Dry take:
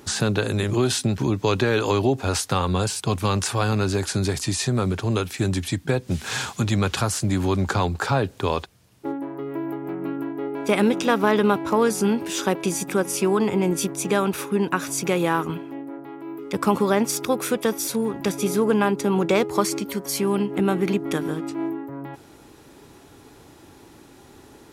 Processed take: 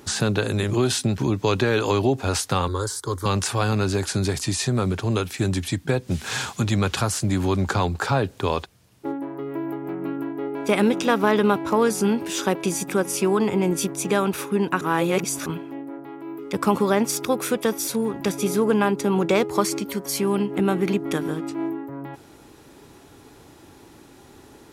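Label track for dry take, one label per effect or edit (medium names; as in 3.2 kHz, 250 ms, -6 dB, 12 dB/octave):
2.680000	3.260000	static phaser centre 700 Hz, stages 6
14.810000	15.460000	reverse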